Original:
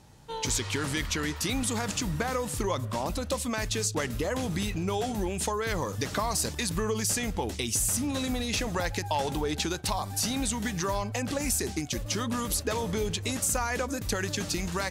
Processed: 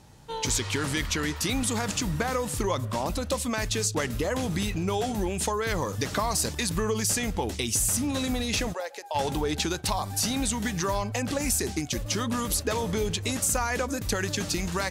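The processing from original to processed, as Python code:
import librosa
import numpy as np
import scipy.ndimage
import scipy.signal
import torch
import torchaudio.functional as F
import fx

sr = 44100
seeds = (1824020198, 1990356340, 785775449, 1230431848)

y = fx.ladder_highpass(x, sr, hz=440.0, resonance_pct=50, at=(8.72, 9.14), fade=0.02)
y = y * 10.0 ** (2.0 / 20.0)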